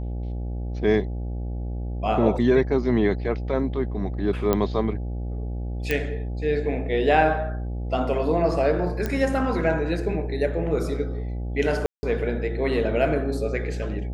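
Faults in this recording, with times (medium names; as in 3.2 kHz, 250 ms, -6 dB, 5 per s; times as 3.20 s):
buzz 60 Hz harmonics 14 -29 dBFS
4.53 s: pop -8 dBFS
5.91 s: pop -10 dBFS
9.06 s: pop -13 dBFS
11.86–12.03 s: dropout 170 ms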